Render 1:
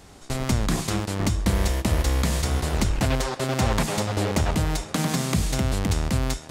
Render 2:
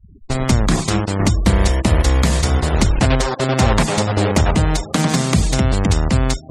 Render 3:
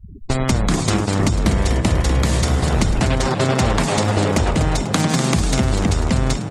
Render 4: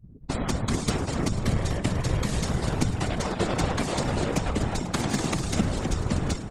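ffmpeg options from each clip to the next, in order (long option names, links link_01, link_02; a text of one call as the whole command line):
ffmpeg -i in.wav -af "afftfilt=real='re*gte(hypot(re,im),0.02)':imag='im*gte(hypot(re,im),0.02)':win_size=1024:overlap=0.75,volume=8dB" out.wav
ffmpeg -i in.wav -filter_complex "[0:a]acompressor=threshold=-24dB:ratio=3,asplit=2[link_01][link_02];[link_02]asplit=6[link_03][link_04][link_05][link_06][link_07][link_08];[link_03]adelay=246,afreqshift=55,volume=-9dB[link_09];[link_04]adelay=492,afreqshift=110,volume=-14.4dB[link_10];[link_05]adelay=738,afreqshift=165,volume=-19.7dB[link_11];[link_06]adelay=984,afreqshift=220,volume=-25.1dB[link_12];[link_07]adelay=1230,afreqshift=275,volume=-30.4dB[link_13];[link_08]adelay=1476,afreqshift=330,volume=-35.8dB[link_14];[link_09][link_10][link_11][link_12][link_13][link_14]amix=inputs=6:normalize=0[link_15];[link_01][link_15]amix=inputs=2:normalize=0,volume=6.5dB" out.wav
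ffmpeg -i in.wav -af "afftfilt=real='hypot(re,im)*cos(2*PI*random(0))':imag='hypot(re,im)*sin(2*PI*random(1))':win_size=512:overlap=0.75,aeval=exprs='0.376*(cos(1*acos(clip(val(0)/0.376,-1,1)))-cos(1*PI/2))+0.0422*(cos(3*acos(clip(val(0)/0.376,-1,1)))-cos(3*PI/2))':channel_layout=same" out.wav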